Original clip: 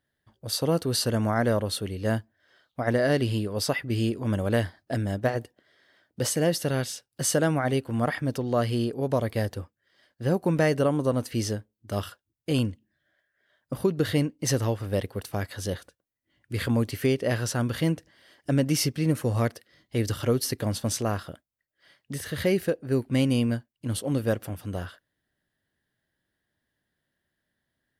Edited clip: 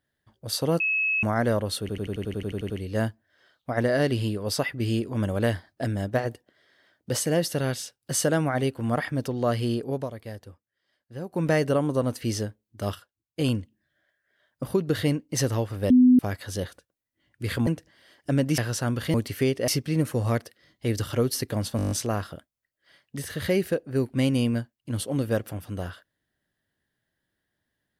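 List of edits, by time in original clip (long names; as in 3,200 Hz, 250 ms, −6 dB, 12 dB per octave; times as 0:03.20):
0:00.80–0:01.23: beep over 2,580 Hz −21.5 dBFS
0:01.80: stutter 0.09 s, 11 plays
0:09.01–0:10.56: duck −11 dB, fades 0.18 s
0:12.05–0:12.49: clip gain −7.5 dB
0:15.00–0:15.29: beep over 251 Hz −12 dBFS
0:16.77–0:17.31: swap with 0:17.87–0:18.78
0:20.87: stutter 0.02 s, 8 plays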